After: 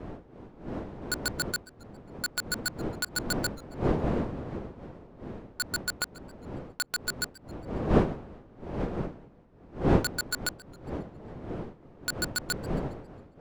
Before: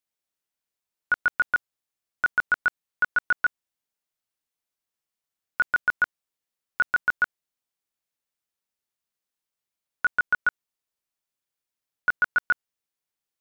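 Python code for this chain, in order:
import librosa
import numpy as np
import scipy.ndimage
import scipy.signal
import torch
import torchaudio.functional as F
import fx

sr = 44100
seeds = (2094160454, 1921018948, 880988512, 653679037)

y = fx.dead_time(x, sr, dead_ms=0.25)
y = fx.dmg_wind(y, sr, seeds[0], corner_hz=400.0, level_db=-34.0)
y = fx.echo_warbled(y, sr, ms=136, feedback_pct=48, rate_hz=2.8, cents=131, wet_db=-21.5)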